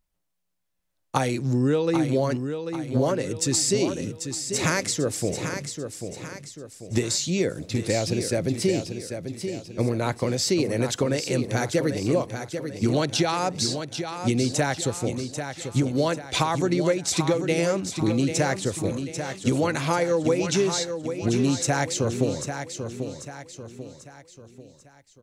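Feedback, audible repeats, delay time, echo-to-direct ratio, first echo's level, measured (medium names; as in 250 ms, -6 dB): 43%, 4, 791 ms, -7.0 dB, -8.0 dB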